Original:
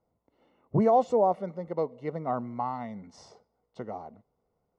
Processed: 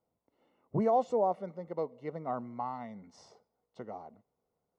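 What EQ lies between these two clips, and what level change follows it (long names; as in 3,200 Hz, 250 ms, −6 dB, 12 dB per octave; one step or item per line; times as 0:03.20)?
low-shelf EQ 73 Hz −10.5 dB
−5.0 dB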